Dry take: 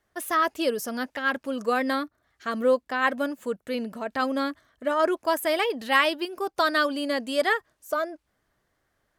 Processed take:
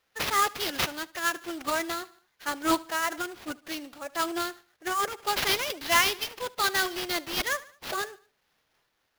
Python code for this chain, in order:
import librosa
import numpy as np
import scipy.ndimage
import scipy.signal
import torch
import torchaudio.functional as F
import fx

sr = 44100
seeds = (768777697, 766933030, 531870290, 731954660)

p1 = fx.riaa(x, sr, side='recording')
p2 = fx.pitch_keep_formants(p1, sr, semitones=4.0)
p3 = fx.sample_hold(p2, sr, seeds[0], rate_hz=8400.0, jitter_pct=20)
p4 = p3 + fx.echo_feedback(p3, sr, ms=74, feedback_pct=44, wet_db=-21.5, dry=0)
y = fx.am_noise(p4, sr, seeds[1], hz=5.7, depth_pct=65)